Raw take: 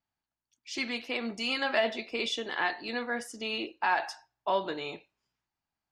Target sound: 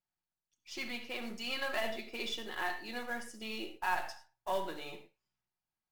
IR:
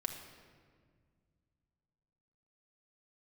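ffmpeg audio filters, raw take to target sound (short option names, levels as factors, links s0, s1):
-filter_complex "[0:a]aeval=exprs='if(lt(val(0),0),0.708*val(0),val(0))':c=same,acrusher=bits=4:mode=log:mix=0:aa=0.000001[s0];[1:a]atrim=start_sample=2205,afade=t=out:st=0.15:d=0.01,atrim=end_sample=7056,asetrate=37044,aresample=44100[s1];[s0][s1]afir=irnorm=-1:irlink=0,volume=0.473"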